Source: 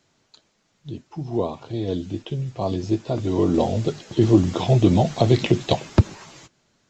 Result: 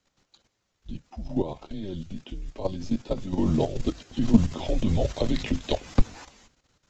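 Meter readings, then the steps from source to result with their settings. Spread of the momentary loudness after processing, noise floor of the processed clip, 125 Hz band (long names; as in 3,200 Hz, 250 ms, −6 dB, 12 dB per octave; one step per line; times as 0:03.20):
17 LU, −77 dBFS, −9.0 dB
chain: frequency shifter −99 Hz
output level in coarse steps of 11 dB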